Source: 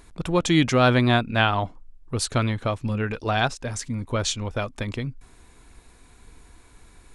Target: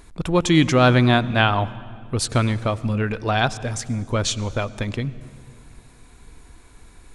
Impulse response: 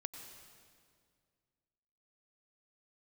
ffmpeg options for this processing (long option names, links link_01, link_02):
-filter_complex "[0:a]asplit=2[link_01][link_02];[1:a]atrim=start_sample=2205,lowshelf=frequency=430:gain=6[link_03];[link_02][link_03]afir=irnorm=-1:irlink=0,volume=-7.5dB[link_04];[link_01][link_04]amix=inputs=2:normalize=0"